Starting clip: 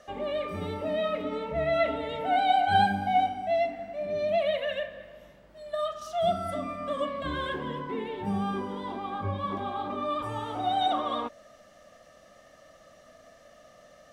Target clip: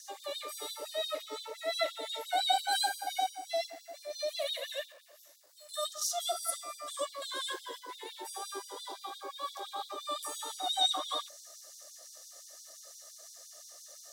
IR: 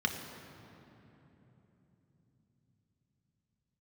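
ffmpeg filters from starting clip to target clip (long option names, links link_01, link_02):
-filter_complex "[0:a]aexciter=amount=12.8:drive=4.2:freq=4000,asettb=1/sr,asplit=3[link_01][link_02][link_03];[link_01]atrim=end=4.924[link_04];[link_02]atrim=start=4.92:end=5.69,asetpts=PTS-STARTPTS,afade=type=in:duration=0.004:curve=qsin,afade=type=out:start_time=0.766:duration=0.004:curve=qsin,aeval=exprs='(tanh(200*val(0)+0.65)-tanh(0.65))/200':channel_layout=same[link_05];[link_03]atrim=start=5.686[link_06];[link_04][link_05]acrossfade=duration=0.004:curve1=hsin:curve2=qsin[link_07];[link_07][link_06]acrossfade=duration=0.004:curve1=qsin:curve2=hsin,bandreject=frequency=3200:width=29,afftfilt=real='re*gte(b*sr/1024,280*pow(3400/280,0.5+0.5*sin(2*PI*5.8*pts/sr)))':imag='im*gte(b*sr/1024,280*pow(3400/280,0.5+0.5*sin(2*PI*5.8*pts/sr)))':win_size=1024:overlap=0.75,volume=-5dB"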